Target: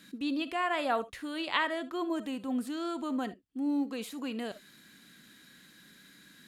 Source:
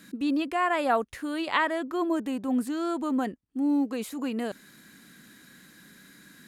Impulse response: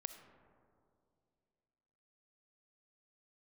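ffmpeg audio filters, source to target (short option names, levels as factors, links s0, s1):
-filter_complex "[0:a]equalizer=f=3400:t=o:w=1.1:g=7[s0];[1:a]atrim=start_sample=2205,atrim=end_sample=3528[s1];[s0][s1]afir=irnorm=-1:irlink=0,volume=0.794"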